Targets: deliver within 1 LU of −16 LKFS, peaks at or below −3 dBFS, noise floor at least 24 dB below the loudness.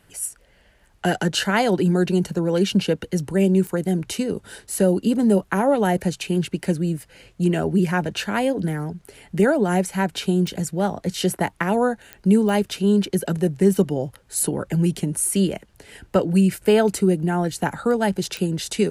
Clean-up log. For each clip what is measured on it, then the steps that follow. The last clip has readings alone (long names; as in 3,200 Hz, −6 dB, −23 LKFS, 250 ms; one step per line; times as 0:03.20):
number of clicks 5; integrated loudness −21.5 LKFS; sample peak −4.5 dBFS; target loudness −16.0 LKFS
→ click removal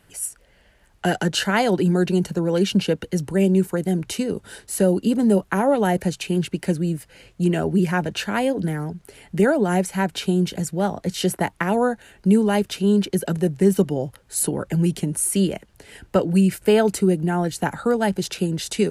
number of clicks 0; integrated loudness −21.5 LKFS; sample peak −4.5 dBFS; target loudness −16.0 LKFS
→ level +5.5 dB
brickwall limiter −3 dBFS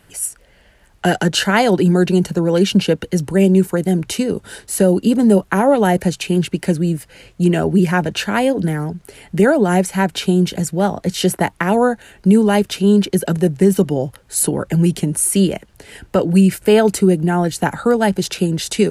integrated loudness −16.5 LKFS; sample peak −3.0 dBFS; background noise floor −51 dBFS